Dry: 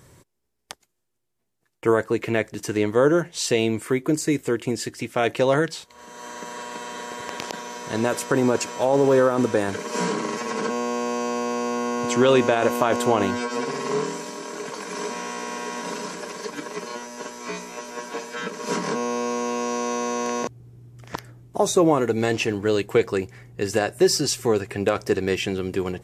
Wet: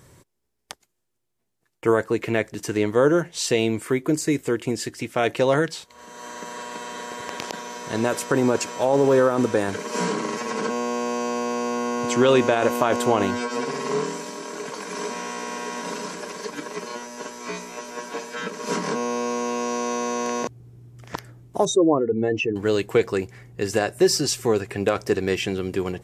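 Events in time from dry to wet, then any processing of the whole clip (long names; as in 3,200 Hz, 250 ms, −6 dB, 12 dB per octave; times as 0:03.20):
0:21.65–0:22.56: expanding power law on the bin magnitudes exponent 2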